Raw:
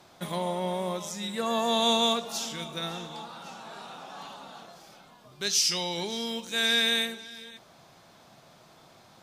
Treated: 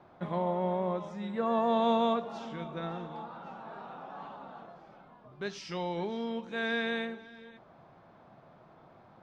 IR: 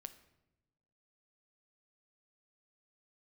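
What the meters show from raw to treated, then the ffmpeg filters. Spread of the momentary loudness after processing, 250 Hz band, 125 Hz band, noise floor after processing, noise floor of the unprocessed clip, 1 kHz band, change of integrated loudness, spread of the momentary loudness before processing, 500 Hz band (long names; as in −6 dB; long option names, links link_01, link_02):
18 LU, 0.0 dB, 0.0 dB, −58 dBFS, −56 dBFS, −1.0 dB, −6.0 dB, 20 LU, 0.0 dB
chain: -af "lowpass=1400"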